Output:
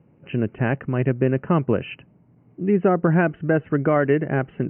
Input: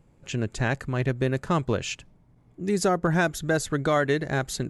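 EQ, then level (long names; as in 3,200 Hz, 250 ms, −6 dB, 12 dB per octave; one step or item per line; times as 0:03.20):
high-pass filter 150 Hz 12 dB per octave
Chebyshev low-pass filter 3,000 Hz, order 10
low-shelf EQ 480 Hz +10 dB
0.0 dB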